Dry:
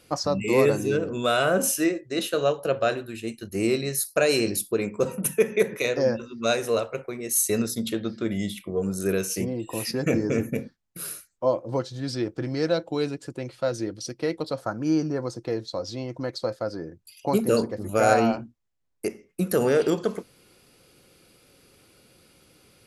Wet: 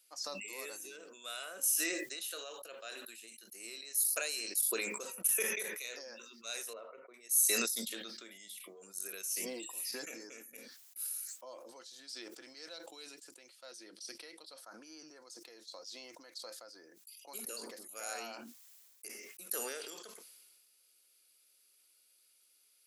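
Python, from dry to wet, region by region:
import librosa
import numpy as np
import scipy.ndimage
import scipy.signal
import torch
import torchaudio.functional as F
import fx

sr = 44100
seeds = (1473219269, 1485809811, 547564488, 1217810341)

y = fx.chain(x, sr, fx.lowpass(hz=1100.0, slope=12),
    fx.notch_comb(f0_hz=820.0), at=(6.73, 7.14))
y = fx.chain(y, sr, fx.lowpass(hz=11000.0, slope=24),
    fx.peak_eq(hz=7000.0, db=-7.5, octaves=0.33), at=(13.66, 15.08))
y = scipy.signal.sosfilt(scipy.signal.butter(4, 220.0, 'highpass', fs=sr, output='sos'), y)
y = np.diff(y, prepend=0.0)
y = fx.sustainer(y, sr, db_per_s=30.0)
y = y * librosa.db_to_amplitude(-7.5)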